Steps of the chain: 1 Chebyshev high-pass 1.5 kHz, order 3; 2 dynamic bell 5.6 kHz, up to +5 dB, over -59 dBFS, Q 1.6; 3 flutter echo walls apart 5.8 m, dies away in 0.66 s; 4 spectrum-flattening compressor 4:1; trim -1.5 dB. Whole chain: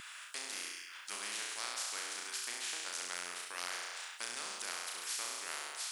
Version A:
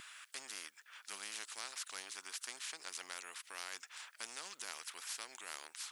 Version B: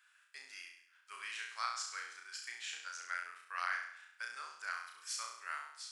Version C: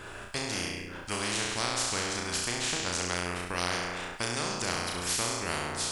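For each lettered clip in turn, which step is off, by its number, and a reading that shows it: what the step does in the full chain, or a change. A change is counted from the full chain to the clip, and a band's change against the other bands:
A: 3, crest factor change +3.0 dB; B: 4, 1 kHz band +10.5 dB; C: 1, 250 Hz band +14.5 dB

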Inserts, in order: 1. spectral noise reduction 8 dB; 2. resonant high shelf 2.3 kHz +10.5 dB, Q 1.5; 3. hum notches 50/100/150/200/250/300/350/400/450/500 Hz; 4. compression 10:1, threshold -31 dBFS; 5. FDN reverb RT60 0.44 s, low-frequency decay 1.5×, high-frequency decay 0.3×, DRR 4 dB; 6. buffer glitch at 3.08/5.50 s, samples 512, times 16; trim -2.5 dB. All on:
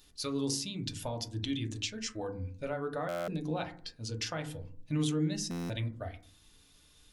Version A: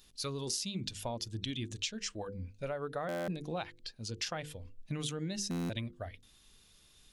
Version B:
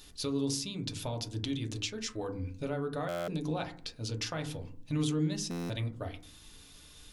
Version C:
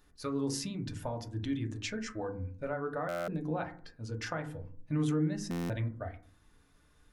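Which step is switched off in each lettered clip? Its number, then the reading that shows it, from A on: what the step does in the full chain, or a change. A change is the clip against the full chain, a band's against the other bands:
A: 5, crest factor change +3.0 dB; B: 1, momentary loudness spread change +5 LU; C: 2, 4 kHz band -8.0 dB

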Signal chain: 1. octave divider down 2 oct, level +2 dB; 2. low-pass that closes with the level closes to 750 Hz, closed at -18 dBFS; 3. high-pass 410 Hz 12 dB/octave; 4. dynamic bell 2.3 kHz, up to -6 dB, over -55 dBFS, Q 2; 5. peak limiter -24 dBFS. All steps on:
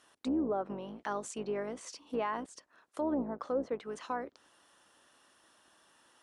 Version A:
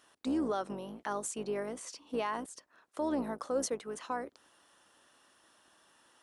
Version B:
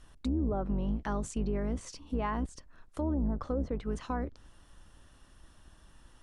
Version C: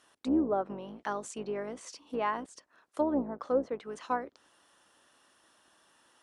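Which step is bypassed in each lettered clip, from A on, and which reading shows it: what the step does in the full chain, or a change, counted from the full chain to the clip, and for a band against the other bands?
2, 8 kHz band +7.0 dB; 3, 125 Hz band +17.5 dB; 5, crest factor change +4.0 dB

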